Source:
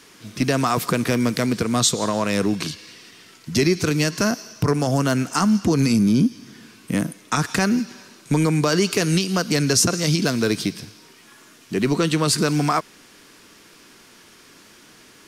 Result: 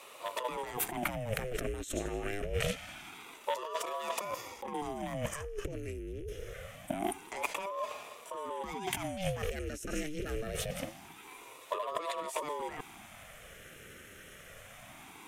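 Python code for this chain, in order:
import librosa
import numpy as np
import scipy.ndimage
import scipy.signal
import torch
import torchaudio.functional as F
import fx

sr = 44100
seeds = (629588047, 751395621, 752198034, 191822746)

y = fx.rattle_buzz(x, sr, strikes_db=-32.0, level_db=-26.0)
y = fx.over_compress(y, sr, threshold_db=-28.0, ratio=-1.0)
y = fx.fixed_phaser(y, sr, hz=2000.0, stages=4)
y = fx.notch_comb(y, sr, f0_hz=1200.0)
y = fx.ring_lfo(y, sr, carrier_hz=490.0, swing_pct=70, hz=0.25)
y = y * librosa.db_to_amplitude(-3.0)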